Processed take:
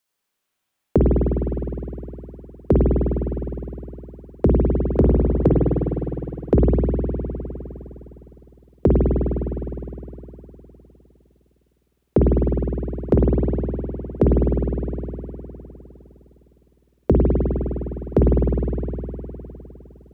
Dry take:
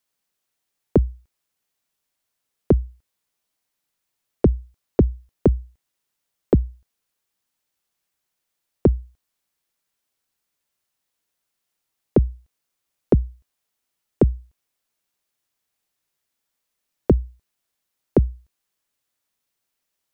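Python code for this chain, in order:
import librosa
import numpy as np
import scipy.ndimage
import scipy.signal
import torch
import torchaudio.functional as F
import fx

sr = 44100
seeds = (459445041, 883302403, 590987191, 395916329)

y = fx.hum_notches(x, sr, base_hz=50, count=8)
y = fx.rev_spring(y, sr, rt60_s=3.4, pass_ms=(51,), chirp_ms=70, drr_db=-3.5)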